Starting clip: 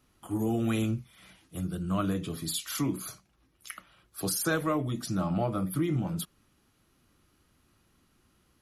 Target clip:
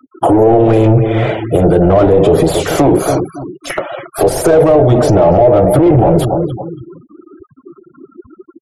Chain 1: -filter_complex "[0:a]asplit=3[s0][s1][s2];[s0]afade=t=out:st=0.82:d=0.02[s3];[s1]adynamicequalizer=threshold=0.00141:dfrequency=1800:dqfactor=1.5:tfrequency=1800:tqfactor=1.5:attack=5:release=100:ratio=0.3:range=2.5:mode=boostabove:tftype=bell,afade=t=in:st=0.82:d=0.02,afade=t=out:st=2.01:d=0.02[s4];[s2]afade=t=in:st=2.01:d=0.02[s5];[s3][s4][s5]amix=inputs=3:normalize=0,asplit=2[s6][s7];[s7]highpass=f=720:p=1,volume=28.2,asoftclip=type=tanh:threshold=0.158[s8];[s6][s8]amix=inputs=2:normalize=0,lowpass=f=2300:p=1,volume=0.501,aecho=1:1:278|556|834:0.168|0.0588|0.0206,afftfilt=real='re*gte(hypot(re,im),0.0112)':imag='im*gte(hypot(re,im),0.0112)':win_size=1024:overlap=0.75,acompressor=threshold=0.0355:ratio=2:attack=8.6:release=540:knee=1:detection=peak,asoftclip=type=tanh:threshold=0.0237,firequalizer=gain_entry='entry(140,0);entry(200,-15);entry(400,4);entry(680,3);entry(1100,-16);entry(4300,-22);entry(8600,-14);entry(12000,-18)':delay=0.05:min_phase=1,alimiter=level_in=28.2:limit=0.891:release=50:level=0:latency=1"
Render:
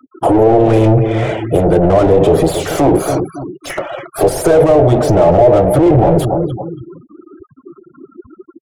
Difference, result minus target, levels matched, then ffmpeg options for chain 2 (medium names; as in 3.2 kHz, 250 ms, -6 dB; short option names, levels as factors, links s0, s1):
saturation: distortion +10 dB
-filter_complex "[0:a]asplit=3[s0][s1][s2];[s0]afade=t=out:st=0.82:d=0.02[s3];[s1]adynamicequalizer=threshold=0.00141:dfrequency=1800:dqfactor=1.5:tfrequency=1800:tqfactor=1.5:attack=5:release=100:ratio=0.3:range=2.5:mode=boostabove:tftype=bell,afade=t=in:st=0.82:d=0.02,afade=t=out:st=2.01:d=0.02[s4];[s2]afade=t=in:st=2.01:d=0.02[s5];[s3][s4][s5]amix=inputs=3:normalize=0,asplit=2[s6][s7];[s7]highpass=f=720:p=1,volume=28.2,asoftclip=type=tanh:threshold=0.158[s8];[s6][s8]amix=inputs=2:normalize=0,lowpass=f=2300:p=1,volume=0.501,aecho=1:1:278|556|834:0.168|0.0588|0.0206,afftfilt=real='re*gte(hypot(re,im),0.0112)':imag='im*gte(hypot(re,im),0.0112)':win_size=1024:overlap=0.75,acompressor=threshold=0.0355:ratio=2:attack=8.6:release=540:knee=1:detection=peak,asoftclip=type=tanh:threshold=0.0631,firequalizer=gain_entry='entry(140,0);entry(200,-15);entry(400,4);entry(680,3);entry(1100,-16);entry(4300,-22);entry(8600,-14);entry(12000,-18)':delay=0.05:min_phase=1,alimiter=level_in=28.2:limit=0.891:release=50:level=0:latency=1"